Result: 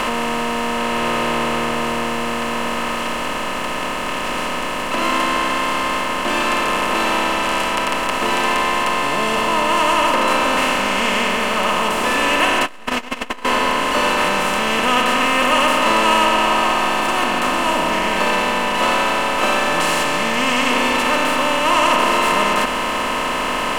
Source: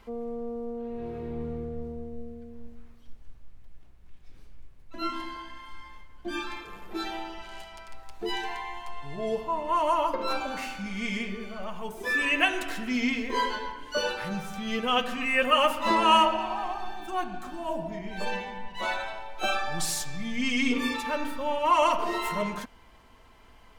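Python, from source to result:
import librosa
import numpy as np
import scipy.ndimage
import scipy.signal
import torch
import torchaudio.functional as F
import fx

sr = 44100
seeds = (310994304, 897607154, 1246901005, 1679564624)

y = fx.bin_compress(x, sr, power=0.2)
y = fx.transformer_sat(y, sr, knee_hz=440.0, at=(12.65, 13.45))
y = y * 10.0 ** (-1.0 / 20.0)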